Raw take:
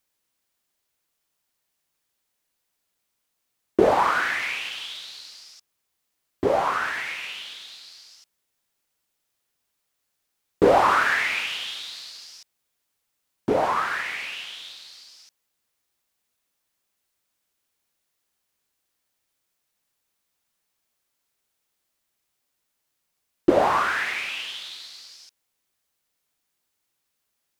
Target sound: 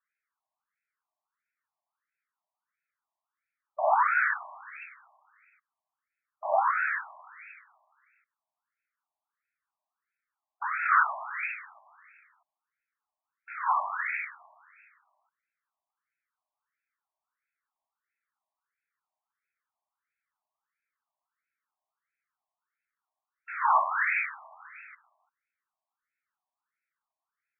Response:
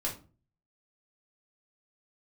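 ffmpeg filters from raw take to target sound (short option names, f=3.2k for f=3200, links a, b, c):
-filter_complex "[0:a]asettb=1/sr,asplit=3[a][b][c];[a]atrim=end=23.504[d];[b]atrim=start=23.5:end=24.95,asetpts=PTS-STARTPTS,afade=t=in:d=0.004:c=qsin,afade=t=out:st=1.446:d=0.004:c=qsin,aeval=exprs='val(0)+0.5*0.0251*sgn(val(0))':c=same[e];[c]atrim=start=24.946[f];[d][e]acrossfade=d=0.004:c1=hsin:c2=qsin[g];[g][f]acrossfade=d=0.004:c1=qsin:c2=hsin,afftfilt=real='re*between(b*sr/1024,810*pow(1900/810,0.5+0.5*sin(2*PI*1.5*pts/sr))/1.41,810*pow(1900/810,0.5+0.5*sin(2*PI*1.5*pts/sr))*1.41)':imag='im*between(b*sr/1024,810*pow(1900/810,0.5+0.5*sin(2*PI*1.5*pts/sr))/1.41,810*pow(1900/810,0.5+0.5*sin(2*PI*1.5*pts/sr))*1.41)':win_size=1024:overlap=0.75"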